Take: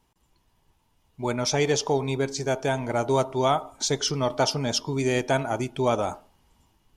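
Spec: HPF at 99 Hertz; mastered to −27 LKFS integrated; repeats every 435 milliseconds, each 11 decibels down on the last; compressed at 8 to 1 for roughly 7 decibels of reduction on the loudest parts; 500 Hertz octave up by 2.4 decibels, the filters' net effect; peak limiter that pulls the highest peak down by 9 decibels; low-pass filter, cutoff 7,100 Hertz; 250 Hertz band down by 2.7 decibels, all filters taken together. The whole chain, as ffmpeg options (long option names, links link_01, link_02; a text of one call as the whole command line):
ffmpeg -i in.wav -af "highpass=99,lowpass=7100,equalizer=frequency=250:width_type=o:gain=-5,equalizer=frequency=500:width_type=o:gain=4.5,acompressor=threshold=-23dB:ratio=8,alimiter=limit=-21.5dB:level=0:latency=1,aecho=1:1:435|870|1305:0.282|0.0789|0.0221,volume=5dB" out.wav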